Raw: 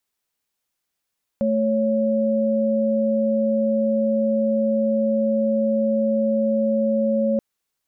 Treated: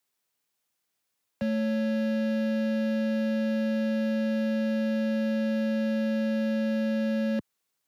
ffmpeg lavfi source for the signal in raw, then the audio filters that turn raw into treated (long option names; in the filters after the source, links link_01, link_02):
-f lavfi -i "aevalsrc='0.1*(sin(2*PI*220*t)+sin(2*PI*554.37*t))':duration=5.98:sample_rate=44100"
-filter_complex "[0:a]highpass=87,acrossover=split=130|190|270[link_01][link_02][link_03][link_04];[link_03]alimiter=level_in=13dB:limit=-24dB:level=0:latency=1,volume=-13dB[link_05];[link_04]asoftclip=type=hard:threshold=-34dB[link_06];[link_01][link_02][link_05][link_06]amix=inputs=4:normalize=0"